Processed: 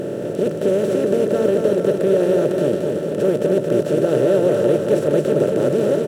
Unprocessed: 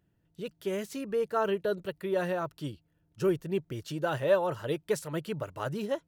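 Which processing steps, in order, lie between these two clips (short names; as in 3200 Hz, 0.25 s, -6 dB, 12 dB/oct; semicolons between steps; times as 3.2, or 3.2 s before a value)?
per-bin compression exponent 0.2; graphic EQ 125/250/500/1000 Hz +6/+10/+10/-10 dB; on a send: feedback echo 0.224 s, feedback 59%, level -5 dB; on the sum: gain -5 dB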